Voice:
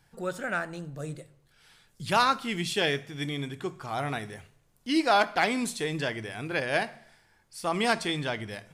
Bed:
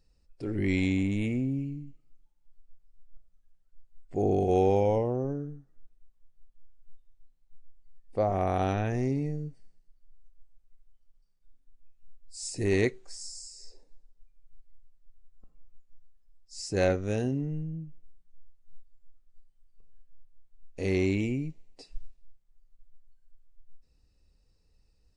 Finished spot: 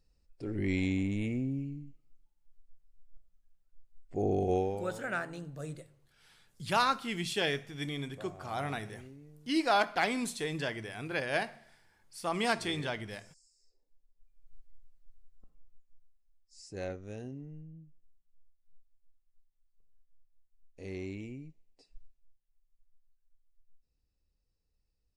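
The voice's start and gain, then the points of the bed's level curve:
4.60 s, -4.5 dB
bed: 4.53 s -4 dB
5.00 s -22.5 dB
13.72 s -22.5 dB
14.48 s -0.5 dB
15.10 s -0.5 dB
16.60 s -13.5 dB

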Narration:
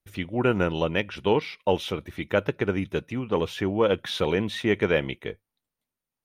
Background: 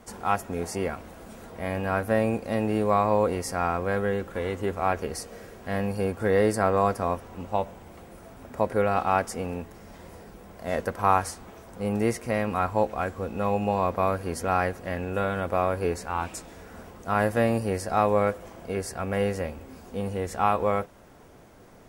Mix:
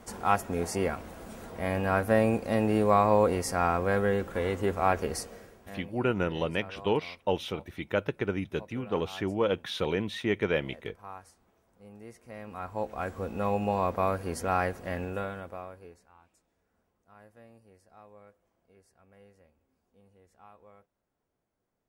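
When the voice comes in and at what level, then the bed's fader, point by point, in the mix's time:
5.60 s, -5.0 dB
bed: 5.19 s 0 dB
6.04 s -23 dB
12.05 s -23 dB
13.15 s -3 dB
15.04 s -3 dB
16.21 s -31.5 dB

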